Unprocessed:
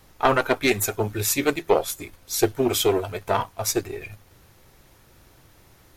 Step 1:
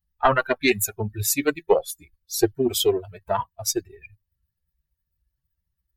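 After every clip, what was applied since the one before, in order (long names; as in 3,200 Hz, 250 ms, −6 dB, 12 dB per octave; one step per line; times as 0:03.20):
spectral dynamics exaggerated over time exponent 2
level +3.5 dB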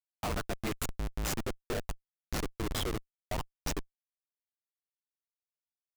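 ring modulation 53 Hz
comparator with hysteresis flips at −25 dBFS
level −3.5 dB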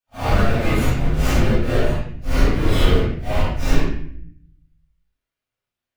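random phases in long frames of 200 ms
convolution reverb RT60 0.60 s, pre-delay 3 ms, DRR −11.5 dB
level +3 dB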